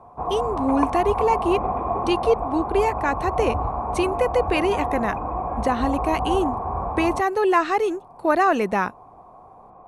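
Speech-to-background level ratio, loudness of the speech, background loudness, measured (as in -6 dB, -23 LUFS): 3.0 dB, -23.5 LUFS, -26.5 LUFS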